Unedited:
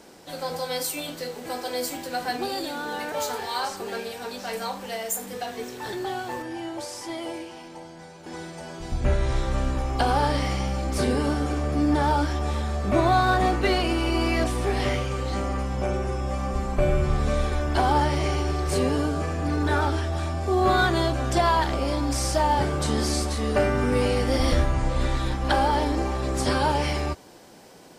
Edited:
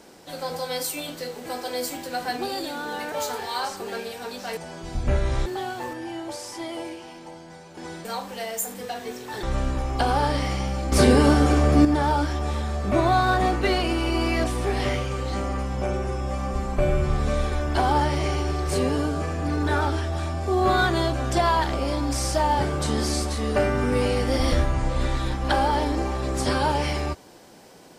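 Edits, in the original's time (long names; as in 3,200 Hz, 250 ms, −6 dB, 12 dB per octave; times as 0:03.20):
0:04.57–0:05.95: swap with 0:08.54–0:09.43
0:10.92–0:11.85: clip gain +7.5 dB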